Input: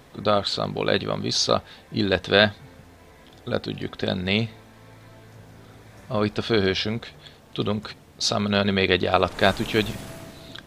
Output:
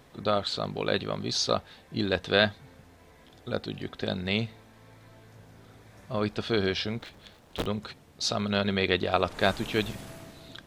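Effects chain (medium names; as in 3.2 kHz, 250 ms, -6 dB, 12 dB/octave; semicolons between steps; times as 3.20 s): 6.99–7.66 s: cycle switcher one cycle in 3, inverted; trim -5.5 dB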